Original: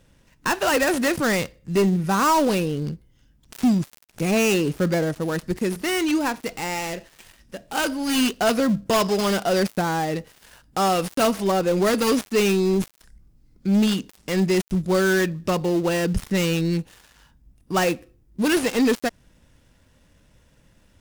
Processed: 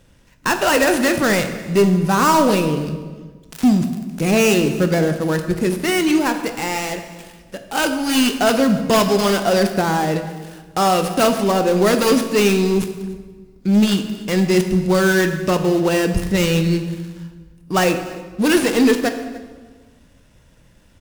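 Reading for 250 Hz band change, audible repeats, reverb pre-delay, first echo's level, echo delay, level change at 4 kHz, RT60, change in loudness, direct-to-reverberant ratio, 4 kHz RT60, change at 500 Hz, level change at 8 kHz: +5.0 dB, 1, 14 ms, -22.0 dB, 0.292 s, +4.5 dB, 1.4 s, +5.0 dB, 7.0 dB, 1.1 s, +5.0 dB, +4.5 dB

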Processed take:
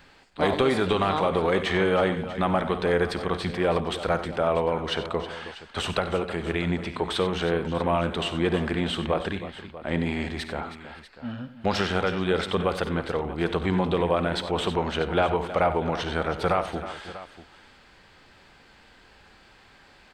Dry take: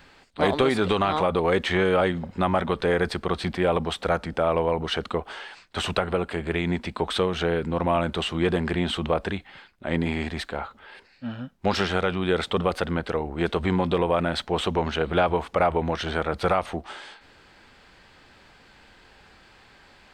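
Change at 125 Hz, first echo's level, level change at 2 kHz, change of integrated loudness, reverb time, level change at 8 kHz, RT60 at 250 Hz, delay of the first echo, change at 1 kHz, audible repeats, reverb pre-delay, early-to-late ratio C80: -1.0 dB, -17.5 dB, -1.0 dB, -1.0 dB, none, -1.0 dB, none, 53 ms, -1.0 dB, 4, none, none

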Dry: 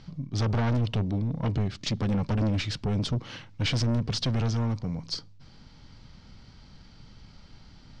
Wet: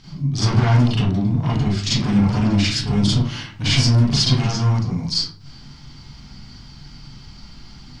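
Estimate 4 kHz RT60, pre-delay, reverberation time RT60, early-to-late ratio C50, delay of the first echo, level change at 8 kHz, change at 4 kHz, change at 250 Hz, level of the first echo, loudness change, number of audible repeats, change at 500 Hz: 0.30 s, 35 ms, 0.50 s, -1.0 dB, none, +13.5 dB, +12.5 dB, +10.0 dB, none, +10.0 dB, none, +5.0 dB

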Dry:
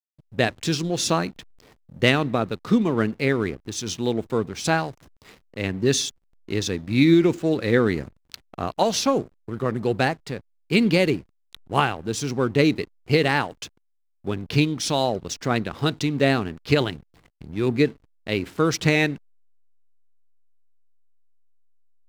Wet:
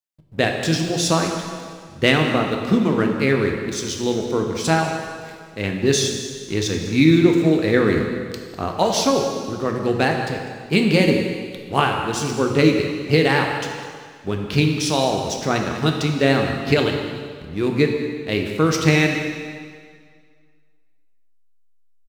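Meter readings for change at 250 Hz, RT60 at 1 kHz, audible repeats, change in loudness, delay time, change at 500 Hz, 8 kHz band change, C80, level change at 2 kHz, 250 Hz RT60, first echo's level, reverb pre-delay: +3.5 dB, 1.8 s, 1, +3.0 dB, 0.201 s, +3.5 dB, +3.5 dB, 5.0 dB, +3.5 dB, 1.9 s, -15.0 dB, 4 ms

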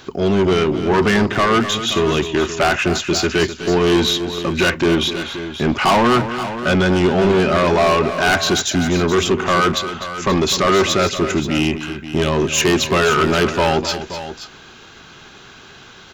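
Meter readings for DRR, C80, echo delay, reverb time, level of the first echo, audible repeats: none, none, 0.252 s, none, -11.5 dB, 2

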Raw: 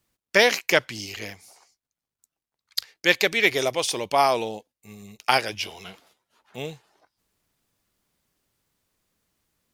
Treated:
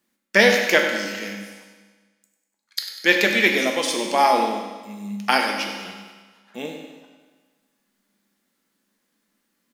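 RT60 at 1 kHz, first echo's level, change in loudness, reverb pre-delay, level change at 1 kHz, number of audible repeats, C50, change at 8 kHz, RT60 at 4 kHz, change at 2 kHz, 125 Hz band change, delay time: 1.4 s, -11.0 dB, +3.0 dB, 4 ms, +3.5 dB, 2, 4.0 dB, +1.0 dB, 1.3 s, +4.0 dB, +1.5 dB, 98 ms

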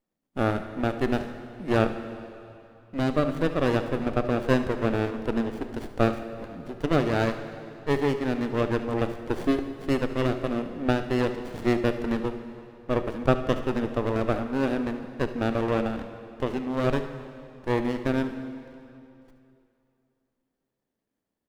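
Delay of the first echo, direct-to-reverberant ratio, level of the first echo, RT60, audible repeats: 71 ms, 8.0 dB, -17.0 dB, 2.7 s, 1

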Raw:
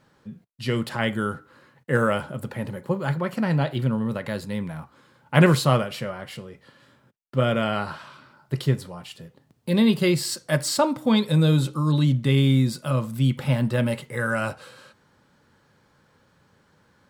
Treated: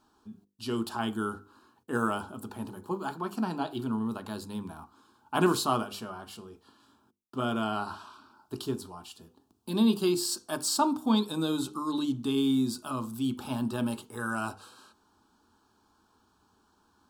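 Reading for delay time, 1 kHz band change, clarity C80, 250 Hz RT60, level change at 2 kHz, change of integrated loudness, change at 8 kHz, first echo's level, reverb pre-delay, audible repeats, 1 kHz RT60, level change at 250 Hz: none, -3.0 dB, none, none, -10.0 dB, -7.5 dB, -2.0 dB, none, none, none, none, -5.5 dB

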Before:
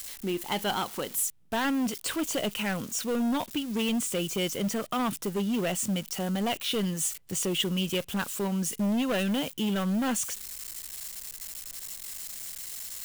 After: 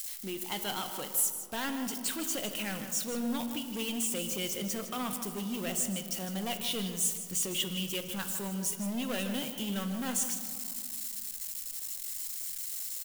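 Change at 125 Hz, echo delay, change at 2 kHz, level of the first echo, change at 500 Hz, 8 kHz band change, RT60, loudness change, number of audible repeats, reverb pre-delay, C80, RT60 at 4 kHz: -7.5 dB, 0.157 s, -5.5 dB, -11.0 dB, -7.5 dB, 0.0 dB, 2.2 s, -3.0 dB, 1, 4 ms, 8.0 dB, 1.3 s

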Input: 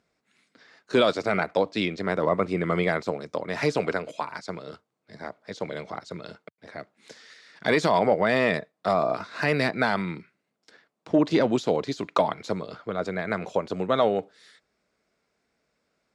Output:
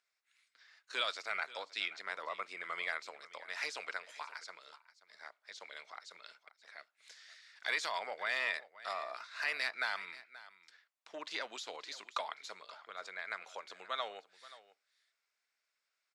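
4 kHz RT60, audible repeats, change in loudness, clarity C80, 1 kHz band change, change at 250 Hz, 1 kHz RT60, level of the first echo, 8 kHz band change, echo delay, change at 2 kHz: none, 1, -14.0 dB, none, -14.0 dB, -35.0 dB, none, -17.5 dB, -6.0 dB, 0.53 s, -7.5 dB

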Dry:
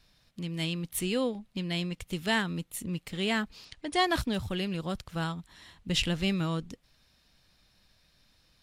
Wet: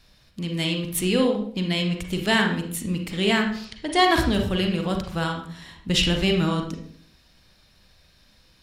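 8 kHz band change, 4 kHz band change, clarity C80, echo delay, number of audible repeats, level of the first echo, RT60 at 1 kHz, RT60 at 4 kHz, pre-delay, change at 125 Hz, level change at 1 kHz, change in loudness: +6.5 dB, +8.0 dB, 10.0 dB, none, none, none, 0.50 s, 0.45 s, 35 ms, +7.5 dB, +8.5 dB, +8.0 dB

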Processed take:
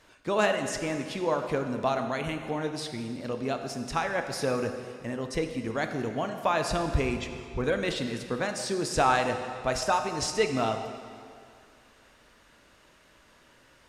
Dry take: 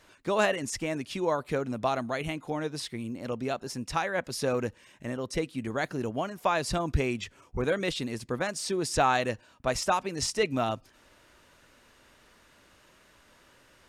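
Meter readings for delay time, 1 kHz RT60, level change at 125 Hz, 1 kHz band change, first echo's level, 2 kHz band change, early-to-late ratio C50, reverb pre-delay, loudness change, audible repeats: none, 2.3 s, +0.5 dB, +1.5 dB, none, +1.0 dB, 7.0 dB, 4 ms, +1.0 dB, none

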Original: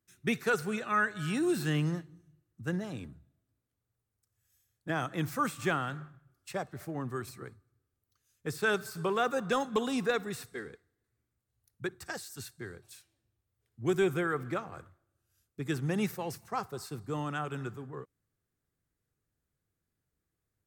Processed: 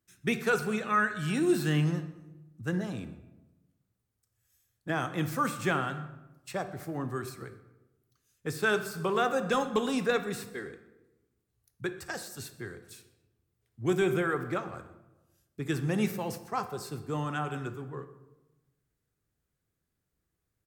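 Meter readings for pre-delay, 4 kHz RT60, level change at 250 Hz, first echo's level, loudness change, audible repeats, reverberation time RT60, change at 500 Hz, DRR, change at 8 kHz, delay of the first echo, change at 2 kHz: 8 ms, 0.60 s, +2.5 dB, -22.0 dB, +2.0 dB, 1, 1.1 s, +2.0 dB, 9.0 dB, +2.0 dB, 0.125 s, +2.0 dB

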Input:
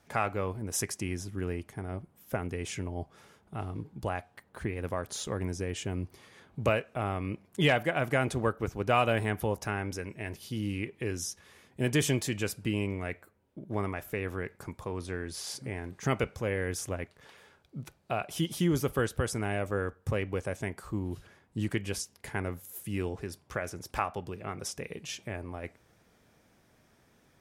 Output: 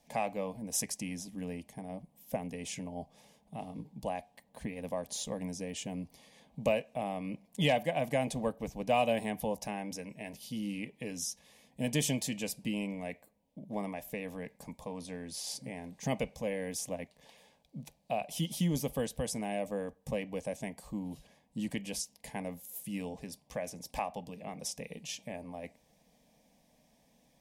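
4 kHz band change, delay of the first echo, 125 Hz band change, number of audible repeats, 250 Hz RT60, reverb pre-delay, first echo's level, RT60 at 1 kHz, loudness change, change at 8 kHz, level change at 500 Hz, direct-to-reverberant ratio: -2.0 dB, none, -7.0 dB, none, none, none, none, none, -3.5 dB, -0.5 dB, -3.0 dB, none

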